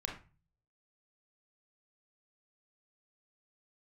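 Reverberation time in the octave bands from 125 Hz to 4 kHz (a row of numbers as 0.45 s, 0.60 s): 0.70 s, 0.50 s, 0.30 s, 0.35 s, 0.30 s, 0.25 s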